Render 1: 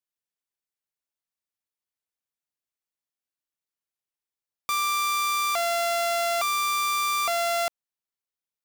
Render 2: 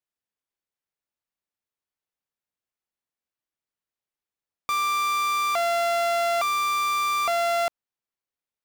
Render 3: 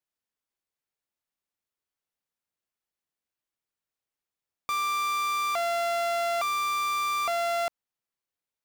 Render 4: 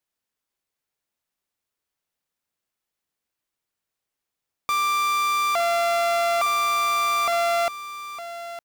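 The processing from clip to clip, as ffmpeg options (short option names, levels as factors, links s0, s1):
-af "highshelf=f=3600:g=-9,volume=1.41"
-af "alimiter=limit=0.0794:level=0:latency=1"
-af "aecho=1:1:909:0.224,volume=1.88"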